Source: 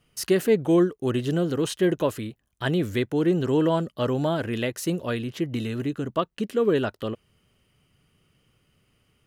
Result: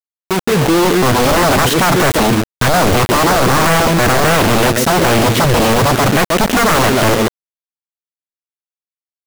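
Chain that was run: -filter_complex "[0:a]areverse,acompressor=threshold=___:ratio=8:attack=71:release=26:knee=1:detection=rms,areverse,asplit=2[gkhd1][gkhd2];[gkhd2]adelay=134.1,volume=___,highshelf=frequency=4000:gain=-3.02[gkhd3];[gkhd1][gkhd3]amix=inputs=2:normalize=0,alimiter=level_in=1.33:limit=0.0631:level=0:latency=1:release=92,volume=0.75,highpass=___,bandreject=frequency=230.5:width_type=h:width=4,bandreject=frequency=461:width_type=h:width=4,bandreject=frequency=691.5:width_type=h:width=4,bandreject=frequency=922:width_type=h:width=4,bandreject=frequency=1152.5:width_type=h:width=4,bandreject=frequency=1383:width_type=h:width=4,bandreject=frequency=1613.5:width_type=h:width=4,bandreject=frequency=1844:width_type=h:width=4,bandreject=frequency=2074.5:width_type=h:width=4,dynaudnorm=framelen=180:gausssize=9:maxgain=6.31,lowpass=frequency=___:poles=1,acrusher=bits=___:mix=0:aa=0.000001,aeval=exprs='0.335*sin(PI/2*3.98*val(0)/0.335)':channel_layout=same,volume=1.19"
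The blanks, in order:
0.0251, 0.224, 89, 1100, 4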